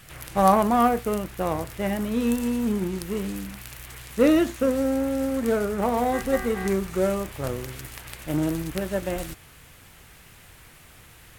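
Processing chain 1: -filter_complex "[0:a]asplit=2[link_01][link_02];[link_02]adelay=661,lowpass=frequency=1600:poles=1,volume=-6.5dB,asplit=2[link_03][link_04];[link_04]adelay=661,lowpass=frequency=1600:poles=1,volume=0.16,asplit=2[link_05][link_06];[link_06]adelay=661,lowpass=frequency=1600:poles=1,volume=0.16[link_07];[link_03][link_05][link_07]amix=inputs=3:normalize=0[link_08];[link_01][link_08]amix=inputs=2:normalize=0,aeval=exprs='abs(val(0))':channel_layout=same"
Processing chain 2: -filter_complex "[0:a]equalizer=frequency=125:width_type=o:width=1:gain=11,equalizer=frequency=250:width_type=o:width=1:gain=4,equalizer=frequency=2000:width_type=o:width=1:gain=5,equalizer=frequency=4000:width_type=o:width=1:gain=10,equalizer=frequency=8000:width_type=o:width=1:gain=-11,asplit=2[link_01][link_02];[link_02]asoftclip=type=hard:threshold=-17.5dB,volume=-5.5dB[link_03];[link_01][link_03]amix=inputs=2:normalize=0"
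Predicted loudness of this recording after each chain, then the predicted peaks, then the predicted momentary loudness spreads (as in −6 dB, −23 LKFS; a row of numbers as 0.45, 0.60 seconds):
−28.5, −18.0 LKFS; −5.0, −2.0 dBFS; 14, 13 LU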